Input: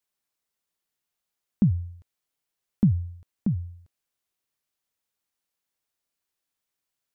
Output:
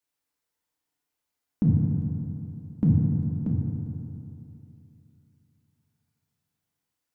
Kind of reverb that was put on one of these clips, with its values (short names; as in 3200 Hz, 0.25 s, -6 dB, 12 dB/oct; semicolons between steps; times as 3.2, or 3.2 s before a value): FDN reverb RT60 2.9 s, high-frequency decay 0.3×, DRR -3.5 dB; gain -3 dB